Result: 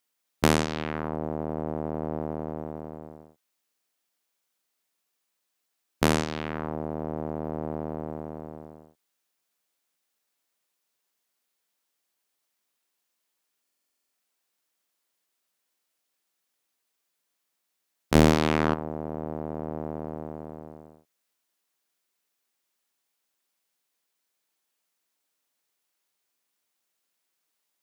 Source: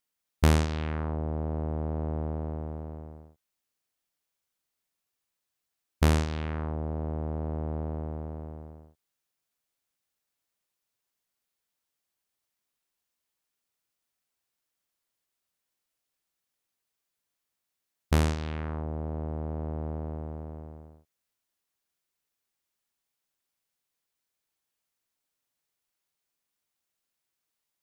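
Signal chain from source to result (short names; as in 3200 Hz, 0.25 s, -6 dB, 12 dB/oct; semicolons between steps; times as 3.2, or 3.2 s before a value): HPF 200 Hz 12 dB/oct; 18.15–18.74 sample leveller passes 3; stuck buffer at 13.62, samples 2048, times 10; gain +5 dB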